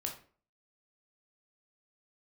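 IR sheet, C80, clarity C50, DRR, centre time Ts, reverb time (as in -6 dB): 13.5 dB, 8.0 dB, 1.0 dB, 19 ms, 0.45 s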